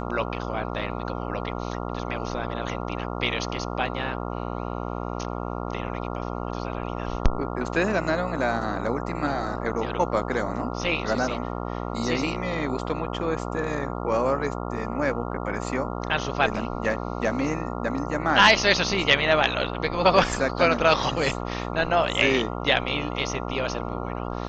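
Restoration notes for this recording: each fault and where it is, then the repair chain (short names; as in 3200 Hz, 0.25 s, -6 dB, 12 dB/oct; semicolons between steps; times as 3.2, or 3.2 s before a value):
buzz 60 Hz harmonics 23 -31 dBFS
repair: de-hum 60 Hz, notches 23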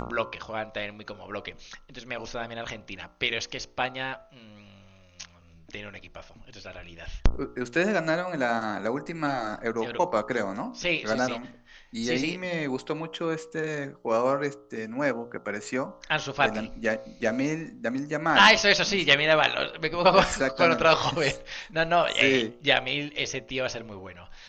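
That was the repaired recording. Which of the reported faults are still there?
none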